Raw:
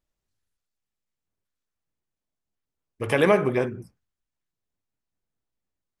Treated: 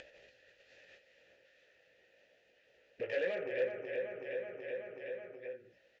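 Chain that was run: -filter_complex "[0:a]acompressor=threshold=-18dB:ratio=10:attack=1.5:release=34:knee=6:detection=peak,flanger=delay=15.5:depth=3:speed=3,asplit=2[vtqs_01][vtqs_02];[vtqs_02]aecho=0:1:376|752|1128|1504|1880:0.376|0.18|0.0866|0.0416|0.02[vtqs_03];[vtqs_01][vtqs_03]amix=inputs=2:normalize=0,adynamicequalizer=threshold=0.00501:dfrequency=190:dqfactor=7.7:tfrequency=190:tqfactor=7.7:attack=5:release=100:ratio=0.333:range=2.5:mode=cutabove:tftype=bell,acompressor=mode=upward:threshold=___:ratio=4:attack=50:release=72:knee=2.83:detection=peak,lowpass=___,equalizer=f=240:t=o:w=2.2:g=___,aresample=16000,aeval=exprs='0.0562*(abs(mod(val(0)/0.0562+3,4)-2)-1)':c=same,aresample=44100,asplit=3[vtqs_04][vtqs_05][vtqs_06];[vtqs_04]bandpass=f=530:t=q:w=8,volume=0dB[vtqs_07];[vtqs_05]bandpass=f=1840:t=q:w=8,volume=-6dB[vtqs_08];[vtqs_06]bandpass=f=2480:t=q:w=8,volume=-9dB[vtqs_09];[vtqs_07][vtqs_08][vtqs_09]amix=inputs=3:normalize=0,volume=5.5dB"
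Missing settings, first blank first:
-31dB, 6200, -7.5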